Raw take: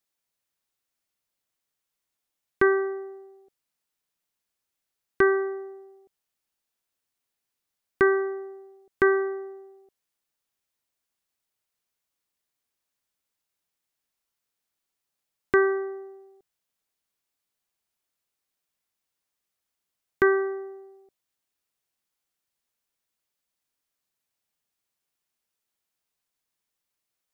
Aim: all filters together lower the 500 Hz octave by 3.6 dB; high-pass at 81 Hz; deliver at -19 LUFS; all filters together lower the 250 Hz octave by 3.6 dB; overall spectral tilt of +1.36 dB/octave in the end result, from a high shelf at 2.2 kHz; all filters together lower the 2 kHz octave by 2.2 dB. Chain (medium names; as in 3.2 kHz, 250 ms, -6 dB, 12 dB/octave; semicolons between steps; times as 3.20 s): high-pass 81 Hz; peaking EQ 250 Hz -3.5 dB; peaking EQ 500 Hz -3.5 dB; peaking EQ 2 kHz -6 dB; treble shelf 2.2 kHz +6.5 dB; trim +9.5 dB